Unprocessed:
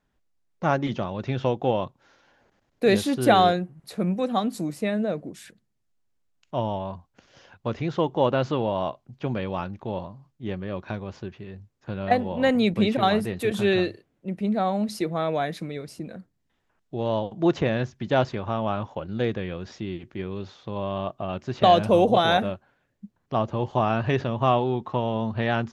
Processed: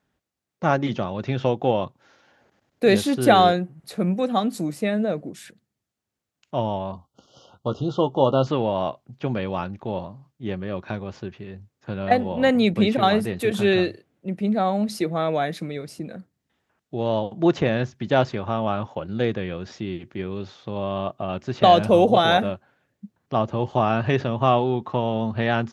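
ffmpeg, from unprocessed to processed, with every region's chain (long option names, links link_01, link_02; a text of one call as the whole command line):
ffmpeg -i in.wav -filter_complex "[0:a]asettb=1/sr,asplit=3[link_01][link_02][link_03];[link_01]atrim=end=6.924[link_04];[link_02]atrim=start=6.92:end=8.47,asetpts=PTS-STARTPTS,afade=type=in:duration=0.004:curve=qsin,afade=type=out:start_time=1.546:duration=0.004:curve=qsin,asuperstop=centerf=2000:order=20:qfactor=1.4,asplit=2[link_05][link_06];[link_06]adelay=15,volume=-11dB[link_07];[link_05][link_07]amix=inputs=2:normalize=0,atrim=end_sample=68355[link_08];[link_03]atrim=start=8.466[link_09];[link_04][link_08]acrossfade=duration=0.004:curve1=hsin:curve2=qsin[link_10];[link_10][link_09]acrossfade=duration=0.004:curve1=qsin:curve2=hsin,highpass=79,bandreject=frequency=1000:width=23,volume=2.5dB" out.wav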